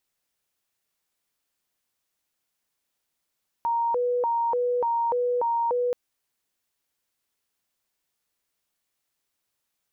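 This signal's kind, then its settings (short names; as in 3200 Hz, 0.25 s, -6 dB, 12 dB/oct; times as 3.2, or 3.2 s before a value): siren hi-lo 490–932 Hz 1.7/s sine -21.5 dBFS 2.28 s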